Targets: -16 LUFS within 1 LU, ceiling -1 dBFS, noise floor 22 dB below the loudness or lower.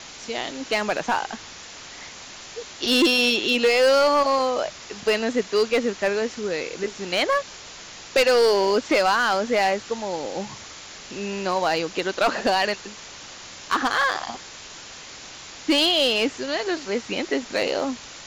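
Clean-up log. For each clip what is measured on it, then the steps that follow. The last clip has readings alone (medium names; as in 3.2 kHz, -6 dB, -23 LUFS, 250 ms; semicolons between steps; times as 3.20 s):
clipped samples 0.9%; clipping level -13.5 dBFS; noise floor -41 dBFS; noise floor target -45 dBFS; loudness -22.5 LUFS; peak level -13.5 dBFS; loudness target -16.0 LUFS
-> clip repair -13.5 dBFS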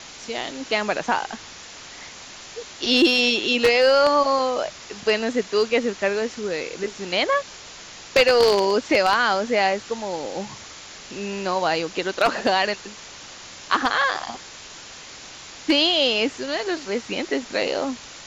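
clipped samples 0.0%; noise floor -41 dBFS; noise floor target -44 dBFS
-> noise reduction 6 dB, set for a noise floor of -41 dBFS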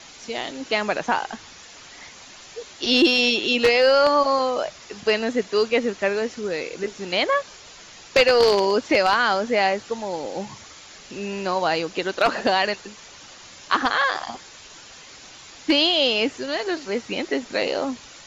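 noise floor -45 dBFS; loudness -21.5 LUFS; peak level -4.5 dBFS; loudness target -16.0 LUFS
-> trim +5.5 dB; peak limiter -1 dBFS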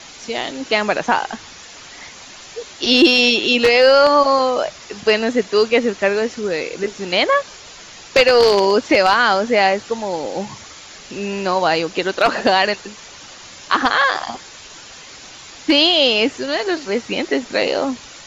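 loudness -16.0 LUFS; peak level -1.0 dBFS; noise floor -39 dBFS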